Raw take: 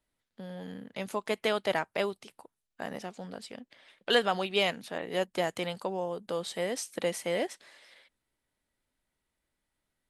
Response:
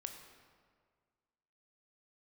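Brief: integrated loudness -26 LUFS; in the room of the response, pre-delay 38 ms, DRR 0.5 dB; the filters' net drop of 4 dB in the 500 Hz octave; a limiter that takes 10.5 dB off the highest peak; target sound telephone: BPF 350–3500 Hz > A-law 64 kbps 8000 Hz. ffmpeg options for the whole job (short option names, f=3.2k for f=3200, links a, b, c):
-filter_complex "[0:a]equalizer=f=500:t=o:g=-3.5,alimiter=limit=-23dB:level=0:latency=1,asplit=2[a][b];[1:a]atrim=start_sample=2205,adelay=38[c];[b][c]afir=irnorm=-1:irlink=0,volume=2.5dB[d];[a][d]amix=inputs=2:normalize=0,highpass=350,lowpass=3.5k,volume=10.5dB" -ar 8000 -c:a pcm_alaw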